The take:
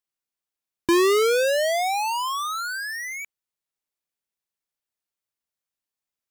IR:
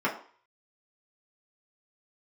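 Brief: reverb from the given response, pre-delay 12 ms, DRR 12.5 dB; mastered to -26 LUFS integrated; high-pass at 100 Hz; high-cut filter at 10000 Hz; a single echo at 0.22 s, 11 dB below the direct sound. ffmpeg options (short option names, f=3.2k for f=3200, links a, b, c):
-filter_complex "[0:a]highpass=100,lowpass=10k,aecho=1:1:220:0.282,asplit=2[a][b];[1:a]atrim=start_sample=2205,adelay=12[c];[b][c]afir=irnorm=-1:irlink=0,volume=-24dB[d];[a][d]amix=inputs=2:normalize=0,volume=-4dB"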